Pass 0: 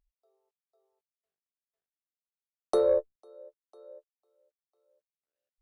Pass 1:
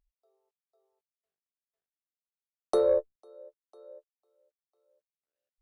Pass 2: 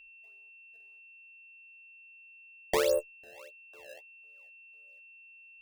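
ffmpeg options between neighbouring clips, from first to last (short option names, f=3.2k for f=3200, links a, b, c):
-af anull
-af "acrusher=samples=22:mix=1:aa=0.000001:lfo=1:lforange=35.2:lforate=1.6,aeval=exprs='val(0)+0.00355*sin(2*PI*2700*n/s)':c=same,volume=-3dB"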